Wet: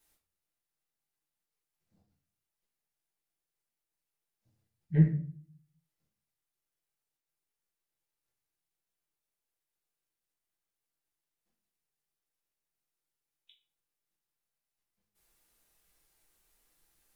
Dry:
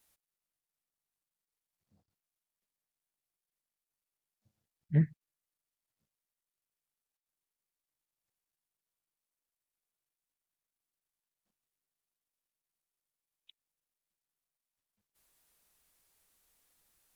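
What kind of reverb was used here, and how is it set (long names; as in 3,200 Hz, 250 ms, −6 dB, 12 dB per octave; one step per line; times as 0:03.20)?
rectangular room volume 40 cubic metres, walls mixed, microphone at 0.8 metres
level −3.5 dB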